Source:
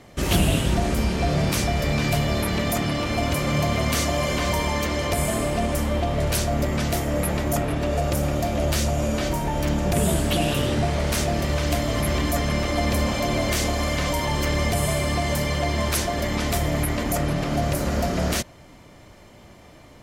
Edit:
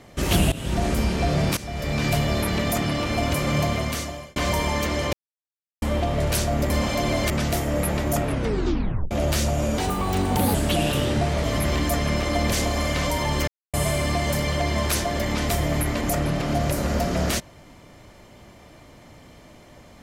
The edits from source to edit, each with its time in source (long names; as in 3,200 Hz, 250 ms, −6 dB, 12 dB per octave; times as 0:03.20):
0:00.52–0:00.84: fade in, from −18 dB
0:01.57–0:02.07: fade in linear, from −17 dB
0:03.62–0:04.36: fade out
0:05.13–0:05.82: silence
0:07.68: tape stop 0.83 s
0:09.18–0:10.16: play speed 128%
0:11.05–0:11.86: remove
0:12.95–0:13.55: move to 0:06.70
0:14.50–0:14.76: silence